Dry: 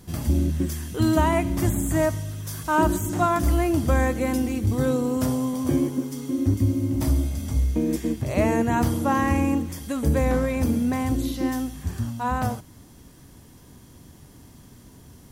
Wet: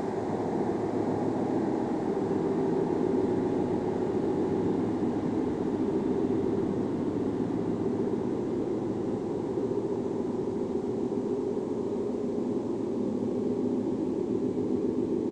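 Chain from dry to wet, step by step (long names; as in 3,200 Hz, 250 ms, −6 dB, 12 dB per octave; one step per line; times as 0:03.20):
high-pass filter 170 Hz 24 dB per octave
bass and treble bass +3 dB, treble −10 dB
cochlear-implant simulation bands 6
three-band delay without the direct sound lows, highs, mids 40/390 ms, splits 430/1,300 Hz
gain into a clipping stage and back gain 16 dB
extreme stretch with random phases 17×, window 1.00 s, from 0:05.53
on a send: bucket-brigade delay 139 ms, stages 1,024, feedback 81%, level −5.5 dB
on the sum: level −6 dB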